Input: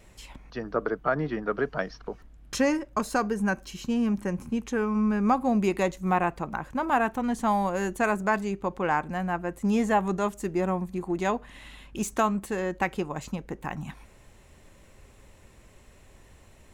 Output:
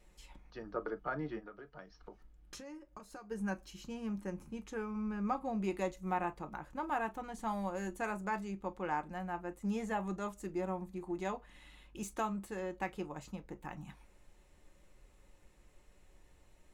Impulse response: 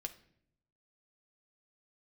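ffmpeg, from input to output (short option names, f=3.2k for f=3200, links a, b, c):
-filter_complex "[0:a]asplit=3[a][b][c];[a]afade=t=out:st=1.38:d=0.02[d];[b]acompressor=threshold=-35dB:ratio=10,afade=t=in:st=1.38:d=0.02,afade=t=out:st=3.3:d=0.02[e];[c]afade=t=in:st=3.3:d=0.02[f];[d][e][f]amix=inputs=3:normalize=0,asettb=1/sr,asplit=3[g][h][i];[g]atrim=end=4.914[j];[h]atrim=start=4.91:end=5.69,asetpts=PTS-STARTPTS,afade=t=in:d=0.004:c=qsin,afade=t=out:st=0.776:d=0.004:c=qsin,highshelf=f=8k:g=-7.5[k];[i]atrim=start=5.686[l];[j][k]acrossfade=d=0.004:c1=hsin:c2=qsin[m];[m][l]acrossfade=d=0.004:c1=qsin:c2=hsin[n];[1:a]atrim=start_sample=2205,atrim=end_sample=4410,asetrate=83790,aresample=44100[o];[n][o]afir=irnorm=-1:irlink=0,volume=-3.5dB"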